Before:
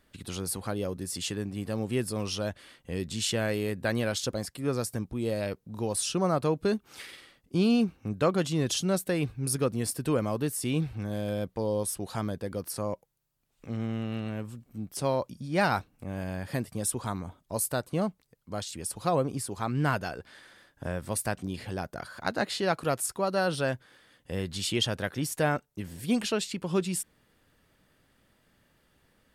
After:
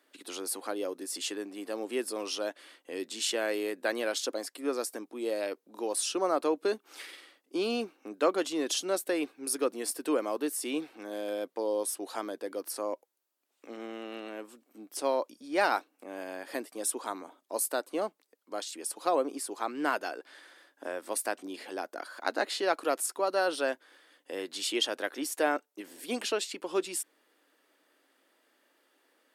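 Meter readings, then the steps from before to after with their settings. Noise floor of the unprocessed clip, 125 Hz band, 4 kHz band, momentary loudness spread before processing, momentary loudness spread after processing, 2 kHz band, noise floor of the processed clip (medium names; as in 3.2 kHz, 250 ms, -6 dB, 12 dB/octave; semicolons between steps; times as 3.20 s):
-70 dBFS, under -25 dB, -1.0 dB, 10 LU, 13 LU, -0.5 dB, -76 dBFS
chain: elliptic high-pass 290 Hz, stop band 80 dB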